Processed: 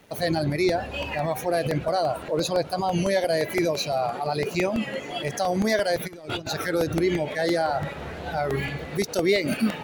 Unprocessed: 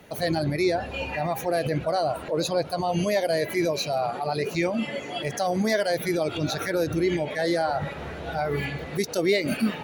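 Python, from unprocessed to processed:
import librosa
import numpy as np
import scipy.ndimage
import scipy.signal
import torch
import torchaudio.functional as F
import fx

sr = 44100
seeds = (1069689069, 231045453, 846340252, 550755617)

y = fx.over_compress(x, sr, threshold_db=-32.0, ratio=-0.5, at=(6.06, 6.49), fade=0.02)
y = np.sign(y) * np.maximum(np.abs(y) - 10.0 ** (-54.5 / 20.0), 0.0)
y = fx.buffer_crackle(y, sr, first_s=0.52, period_s=0.17, block=64, kind='repeat')
y = fx.record_warp(y, sr, rpm=33.33, depth_cents=100.0)
y = y * librosa.db_to_amplitude(1.0)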